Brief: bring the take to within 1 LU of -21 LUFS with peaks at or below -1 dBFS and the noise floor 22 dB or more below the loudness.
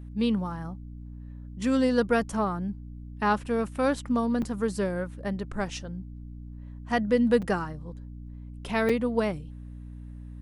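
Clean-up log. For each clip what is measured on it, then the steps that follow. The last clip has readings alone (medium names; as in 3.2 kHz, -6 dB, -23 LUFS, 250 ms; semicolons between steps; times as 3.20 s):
dropouts 3; longest dropout 5.2 ms; hum 60 Hz; highest harmonic 300 Hz; hum level -38 dBFS; loudness -27.5 LUFS; peak level -10.5 dBFS; loudness target -21.0 LUFS
-> interpolate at 4.42/7.42/8.89 s, 5.2 ms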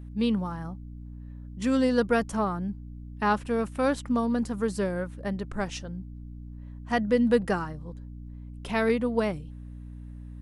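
dropouts 0; hum 60 Hz; highest harmonic 300 Hz; hum level -38 dBFS
-> hum notches 60/120/180/240/300 Hz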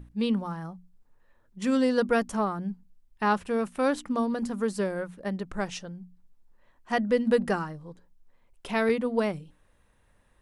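hum not found; loudness -28.5 LUFS; peak level -12.0 dBFS; loudness target -21.0 LUFS
-> trim +7.5 dB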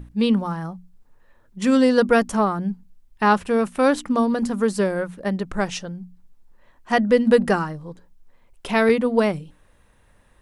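loudness -21.0 LUFS; peak level -4.5 dBFS; noise floor -57 dBFS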